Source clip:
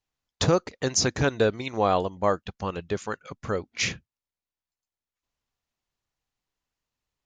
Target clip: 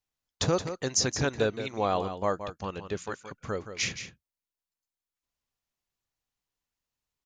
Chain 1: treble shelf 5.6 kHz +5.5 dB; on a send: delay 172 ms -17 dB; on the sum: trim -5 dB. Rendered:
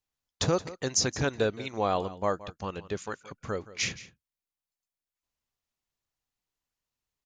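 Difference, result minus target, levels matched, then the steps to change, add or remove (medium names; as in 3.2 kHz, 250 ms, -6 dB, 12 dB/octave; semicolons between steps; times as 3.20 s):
echo-to-direct -7 dB
change: delay 172 ms -10 dB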